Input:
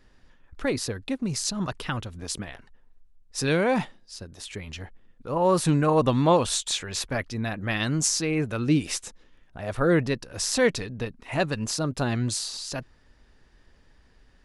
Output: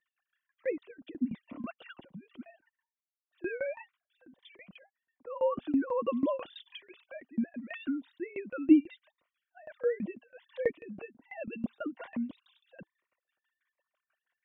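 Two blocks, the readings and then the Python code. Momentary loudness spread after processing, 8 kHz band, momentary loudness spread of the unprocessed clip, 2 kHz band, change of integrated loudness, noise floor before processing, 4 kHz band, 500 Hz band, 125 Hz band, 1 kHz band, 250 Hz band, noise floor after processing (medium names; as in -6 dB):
20 LU, under -40 dB, 16 LU, -13.5 dB, -7.5 dB, -58 dBFS, -23.5 dB, -8.5 dB, -25.5 dB, -14.5 dB, -5.0 dB, under -85 dBFS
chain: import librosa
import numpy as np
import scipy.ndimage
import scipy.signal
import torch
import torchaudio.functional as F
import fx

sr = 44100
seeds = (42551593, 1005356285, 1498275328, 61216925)

y = fx.sine_speech(x, sr)
y = fx.low_shelf(y, sr, hz=280.0, db=10.0)
y = fx.tremolo_shape(y, sr, shape='saw_down', hz=6.1, depth_pct=95)
y = fx.notch_comb(y, sr, f0_hz=430.0)
y = fx.notch_cascade(y, sr, direction='rising', hz=1.3)
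y = F.gain(torch.from_numpy(y), -5.5).numpy()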